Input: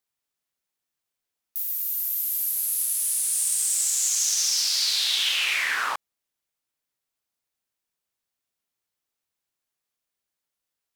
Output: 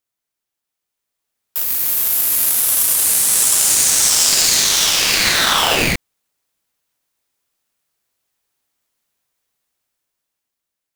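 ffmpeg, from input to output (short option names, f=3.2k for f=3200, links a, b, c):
-af "equalizer=f=3.9k:t=o:w=0.77:g=-3,dynaudnorm=f=310:g=9:m=9dB,aeval=exprs='val(0)*sgn(sin(2*PI*1100*n/s))':c=same,volume=2.5dB"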